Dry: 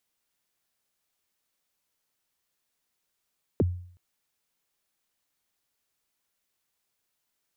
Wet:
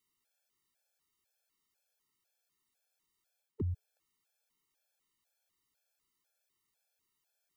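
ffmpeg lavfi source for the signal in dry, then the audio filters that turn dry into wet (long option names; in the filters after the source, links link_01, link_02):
-f lavfi -i "aevalsrc='0.141*pow(10,-3*t/0.56)*sin(2*PI*(530*0.028/log(89/530)*(exp(log(89/530)*min(t,0.028)/0.028)-1)+89*max(t-0.028,0)))':duration=0.37:sample_rate=44100"
-af "areverse,acompressor=threshold=-32dB:ratio=10,areverse,afftfilt=real='re*gt(sin(2*PI*2*pts/sr)*(1-2*mod(floor(b*sr/1024/450),2)),0)':imag='im*gt(sin(2*PI*2*pts/sr)*(1-2*mod(floor(b*sr/1024/450),2)),0)':win_size=1024:overlap=0.75"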